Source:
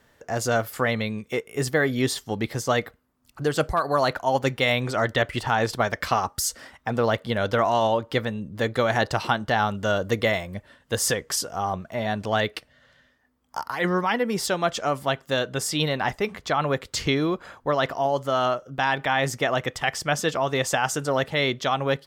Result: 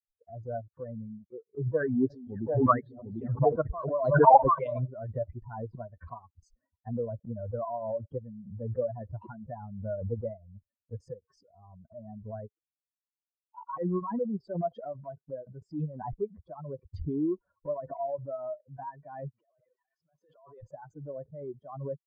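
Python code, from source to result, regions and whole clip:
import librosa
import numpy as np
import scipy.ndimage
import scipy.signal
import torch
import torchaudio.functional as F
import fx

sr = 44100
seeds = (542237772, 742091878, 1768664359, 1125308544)

y = fx.chain(x, sr, fx.reverse_delay_fb(ms=149, feedback_pct=70, wet_db=-11.0),
    fx.echo_single(ms=743, db=-5.5),
    fx.bell_lfo(hz=1.1, low_hz=810.0, high_hz=5800.0, db=14), at=(1.66, 4.88))
y = fx.chain(y, sr, fx.zero_step(step_db=-27.0),
    fx.highpass(hz=1100.0, slope=6),
    fx.over_compress(threshold_db=-33.0, ratio=-1.0), at=(19.31, 20.63))
y = fx.bin_expand(y, sr, power=3.0)
y = scipy.signal.sosfilt(scipy.signal.cheby1(4, 1.0, 1100.0, 'lowpass', fs=sr, output='sos'), y)
y = fx.pre_swell(y, sr, db_per_s=54.0)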